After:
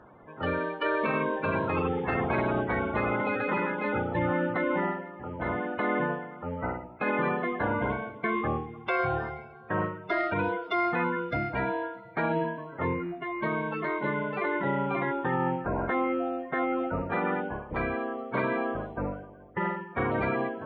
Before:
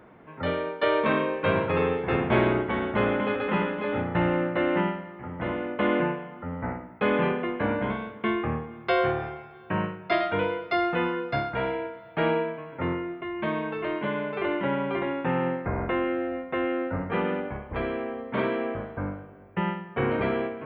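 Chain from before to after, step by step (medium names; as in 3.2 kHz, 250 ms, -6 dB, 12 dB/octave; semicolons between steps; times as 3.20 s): coarse spectral quantiser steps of 30 dB; peak limiter -18.5 dBFS, peak gain reduction 7 dB; tape noise reduction on one side only decoder only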